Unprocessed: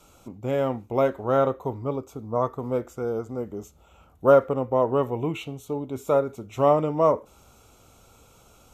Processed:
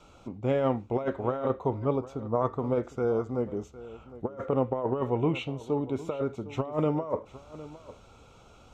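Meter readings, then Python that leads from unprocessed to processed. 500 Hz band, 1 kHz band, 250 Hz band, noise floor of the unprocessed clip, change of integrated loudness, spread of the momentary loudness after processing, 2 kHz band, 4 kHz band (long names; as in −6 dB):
−6.5 dB, −7.0 dB, −1.0 dB, −56 dBFS, −5.5 dB, 17 LU, −5.0 dB, can't be measured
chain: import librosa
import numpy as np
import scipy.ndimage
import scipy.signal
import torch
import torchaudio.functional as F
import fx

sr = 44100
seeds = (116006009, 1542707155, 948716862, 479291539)

y = scipy.signal.sosfilt(scipy.signal.butter(2, 4400.0, 'lowpass', fs=sr, output='sos'), x)
y = fx.over_compress(y, sr, threshold_db=-24.0, ratio=-0.5)
y = y + 10.0 ** (-17.0 / 20.0) * np.pad(y, (int(758 * sr / 1000.0), 0))[:len(y)]
y = y * 10.0 ** (-2.0 / 20.0)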